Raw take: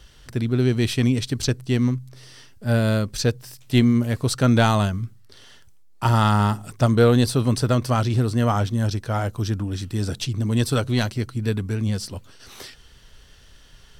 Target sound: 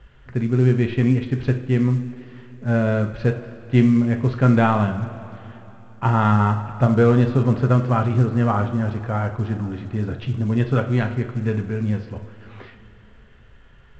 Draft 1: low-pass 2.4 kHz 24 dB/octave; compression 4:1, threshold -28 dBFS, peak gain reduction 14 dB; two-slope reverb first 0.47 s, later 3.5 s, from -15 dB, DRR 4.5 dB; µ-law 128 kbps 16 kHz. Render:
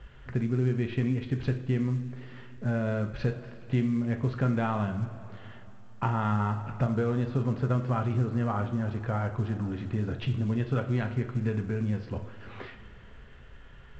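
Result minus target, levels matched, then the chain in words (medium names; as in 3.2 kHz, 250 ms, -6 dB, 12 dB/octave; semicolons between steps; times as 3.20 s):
compression: peak gain reduction +14 dB
low-pass 2.4 kHz 24 dB/octave; two-slope reverb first 0.47 s, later 3.5 s, from -15 dB, DRR 4.5 dB; µ-law 128 kbps 16 kHz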